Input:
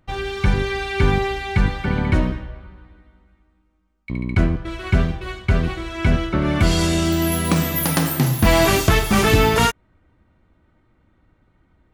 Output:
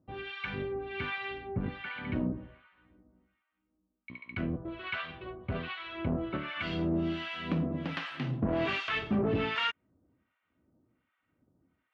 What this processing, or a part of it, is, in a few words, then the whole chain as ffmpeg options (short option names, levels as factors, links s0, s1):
guitar amplifier with harmonic tremolo: -filter_complex "[0:a]acrossover=split=900[s0][s1];[s0]aeval=exprs='val(0)*(1-1/2+1/2*cos(2*PI*1.3*n/s))':c=same[s2];[s1]aeval=exprs='val(0)*(1-1/2-1/2*cos(2*PI*1.3*n/s))':c=same[s3];[s2][s3]amix=inputs=2:normalize=0,asoftclip=type=tanh:threshold=0.188,highpass=110,equalizer=f=260:t=q:w=4:g=6,equalizer=f=870:t=q:w=4:g=-5,equalizer=f=2800:t=q:w=4:g=4,lowpass=f=3400:w=0.5412,lowpass=f=3400:w=1.3066,asettb=1/sr,asplit=3[s4][s5][s6];[s4]atrim=end=4.534[s7];[s5]atrim=start=4.53:end=6.37,asetpts=PTS-STARTPTS,afade=t=in:d=0.004:c=qsin,afade=t=out:st=1.836:d=0.004:c=qsin,equalizer=f=250:t=o:w=1:g=-3,equalizer=f=500:t=o:w=1:g=3,equalizer=f=1000:t=o:w=1:g=5,equalizer=f=4000:t=o:w=1:g=6,equalizer=f=8000:t=o:w=1:g=-5[s8];[s6]atrim=start=6.366[s9];[s7][s8]acrossfade=d=0.004:c1=hsin:c2=qsin[s10];[s10][s9]acrossfade=d=0.004:c1=qsin:c2=hsin,volume=0.422"